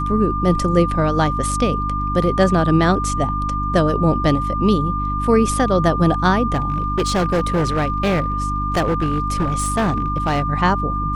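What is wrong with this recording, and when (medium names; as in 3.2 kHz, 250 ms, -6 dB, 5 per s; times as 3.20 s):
hum 50 Hz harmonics 6 -24 dBFS
whine 1.2 kHz -22 dBFS
6.54–10.42 s: clipped -14 dBFS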